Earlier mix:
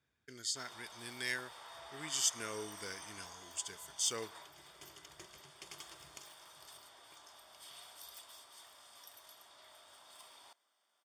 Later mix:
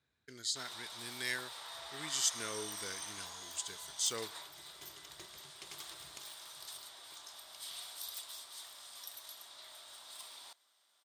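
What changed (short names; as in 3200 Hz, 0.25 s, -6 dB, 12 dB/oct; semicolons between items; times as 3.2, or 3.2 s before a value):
first sound: add high shelf 2200 Hz +9 dB; master: remove Butterworth band-stop 4000 Hz, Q 7.7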